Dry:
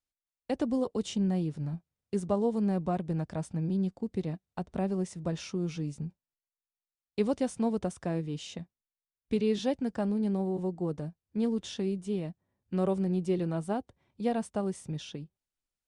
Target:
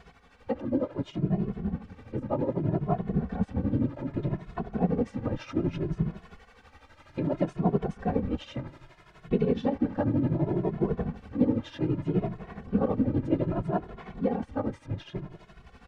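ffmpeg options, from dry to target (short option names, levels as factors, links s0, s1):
-filter_complex "[0:a]aeval=exprs='val(0)+0.5*0.0126*sgn(val(0))':c=same,lowpass=1800,asplit=2[s0][s1];[s1]alimiter=level_in=1.41:limit=0.0631:level=0:latency=1:release=191,volume=0.708,volume=0.794[s2];[s0][s2]amix=inputs=2:normalize=0,tremolo=f=12:d=0.7,afftfilt=real='hypot(re,im)*cos(2*PI*random(0))':imag='hypot(re,im)*sin(2*PI*random(1))':win_size=512:overlap=0.75,dynaudnorm=f=880:g=7:m=1.5,asplit=2[s3][s4];[s4]adelay=2.3,afreqshift=0.64[s5];[s3][s5]amix=inputs=2:normalize=1,volume=2.37"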